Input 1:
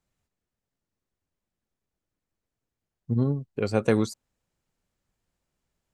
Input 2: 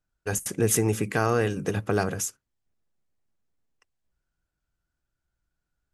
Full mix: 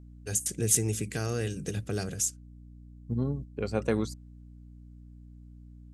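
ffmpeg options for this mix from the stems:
ffmpeg -i stem1.wav -i stem2.wav -filter_complex "[0:a]volume=-5.5dB,asplit=2[link_01][link_02];[1:a]equalizer=frequency=125:width_type=o:width=1:gain=5,equalizer=frequency=1000:width_type=o:width=1:gain=-12,equalizer=frequency=4000:width_type=o:width=1:gain=5,equalizer=frequency=8000:width_type=o:width=1:gain=10,aeval=exprs='val(0)+0.01*(sin(2*PI*60*n/s)+sin(2*PI*2*60*n/s)/2+sin(2*PI*3*60*n/s)/3+sin(2*PI*4*60*n/s)/4+sin(2*PI*5*60*n/s)/5)':channel_layout=same,volume=0.5dB[link_03];[link_02]apad=whole_len=261808[link_04];[link_03][link_04]sidechaingate=range=-8dB:threshold=-39dB:ratio=16:detection=peak[link_05];[link_01][link_05]amix=inputs=2:normalize=0" out.wav

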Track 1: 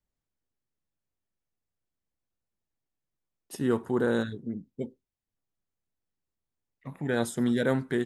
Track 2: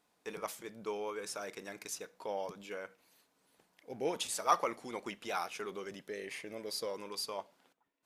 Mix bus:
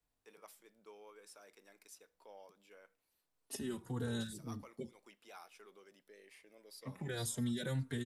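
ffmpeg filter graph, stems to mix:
ffmpeg -i stem1.wav -i stem2.wav -filter_complex "[0:a]asplit=2[link_01][link_02];[link_02]adelay=3.7,afreqshift=-1.8[link_03];[link_01][link_03]amix=inputs=2:normalize=1,volume=1.5dB[link_04];[1:a]highpass=230,highshelf=frequency=8100:gain=7,bandreject=frequency=6500:width=11,volume=-17.5dB[link_05];[link_04][link_05]amix=inputs=2:normalize=0,acrossover=split=140|3000[link_06][link_07][link_08];[link_07]acompressor=threshold=-47dB:ratio=3[link_09];[link_06][link_09][link_08]amix=inputs=3:normalize=0" out.wav

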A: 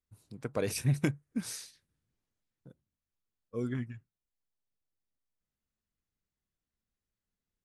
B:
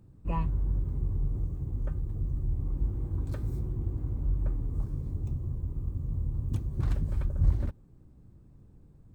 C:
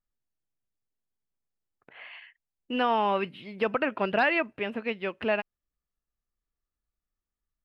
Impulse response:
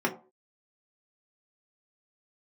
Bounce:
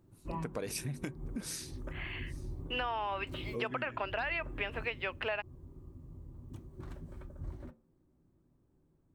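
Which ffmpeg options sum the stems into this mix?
-filter_complex "[0:a]acompressor=threshold=-34dB:ratio=4,volume=1dB,asplit=3[link_01][link_02][link_03];[link_02]volume=-21.5dB[link_04];[1:a]volume=-5dB,afade=type=out:start_time=4.67:duration=0.59:silence=0.446684,asplit=2[link_05][link_06];[link_06]volume=-14dB[link_07];[2:a]highpass=640,alimiter=limit=-20.5dB:level=0:latency=1,volume=2.5dB[link_08];[link_03]apad=whole_len=403108[link_09];[link_05][link_09]sidechaincompress=threshold=-51dB:ratio=8:attack=16:release=127[link_10];[3:a]atrim=start_sample=2205[link_11];[link_07][link_11]afir=irnorm=-1:irlink=0[link_12];[link_04]aecho=0:1:838:1[link_13];[link_01][link_10][link_08][link_12][link_13]amix=inputs=5:normalize=0,lowshelf=frequency=140:gain=-7.5,acompressor=threshold=-31dB:ratio=10"

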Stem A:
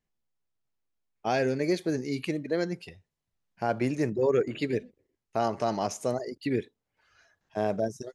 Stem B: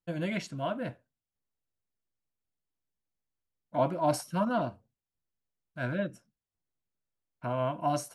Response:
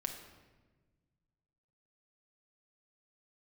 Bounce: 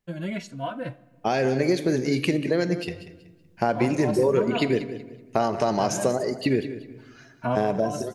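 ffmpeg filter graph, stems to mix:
-filter_complex "[0:a]acompressor=threshold=-29dB:ratio=6,volume=-1dB,asplit=4[link_01][link_02][link_03][link_04];[link_02]volume=-4.5dB[link_05];[link_03]volume=-10dB[link_06];[1:a]asoftclip=type=hard:threshold=-18dB,asplit=2[link_07][link_08];[link_08]adelay=3.3,afreqshift=1[link_09];[link_07][link_09]amix=inputs=2:normalize=1,volume=1.5dB,asplit=2[link_10][link_11];[link_11]volume=-14.5dB[link_12];[link_04]apad=whole_len=359509[link_13];[link_10][link_13]sidechaincompress=threshold=-53dB:ratio=8:attack=16:release=181[link_14];[2:a]atrim=start_sample=2205[link_15];[link_05][link_12]amix=inputs=2:normalize=0[link_16];[link_16][link_15]afir=irnorm=-1:irlink=0[link_17];[link_06]aecho=0:1:188|376|564|752:1|0.27|0.0729|0.0197[link_18];[link_01][link_14][link_17][link_18]amix=inputs=4:normalize=0,dynaudnorm=framelen=250:gausssize=9:maxgain=8dB"

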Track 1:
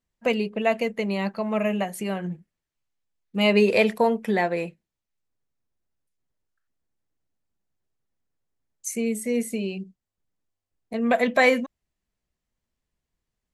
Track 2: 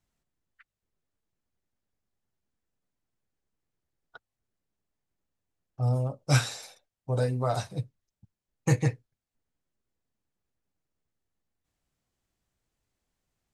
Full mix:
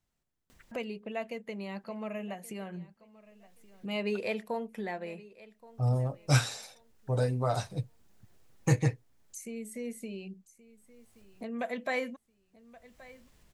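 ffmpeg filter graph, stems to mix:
ffmpeg -i stem1.wav -i stem2.wav -filter_complex "[0:a]acompressor=mode=upward:threshold=-21dB:ratio=2.5,adelay=500,volume=-14dB,asplit=2[link_01][link_02];[link_02]volume=-20dB[link_03];[1:a]volume=-1.5dB,asplit=2[link_04][link_05];[link_05]apad=whole_len=619037[link_06];[link_01][link_06]sidechaincompress=threshold=-30dB:ratio=8:attack=28:release=1070[link_07];[link_03]aecho=0:1:1125|2250|3375|4500:1|0.24|0.0576|0.0138[link_08];[link_07][link_04][link_08]amix=inputs=3:normalize=0" out.wav

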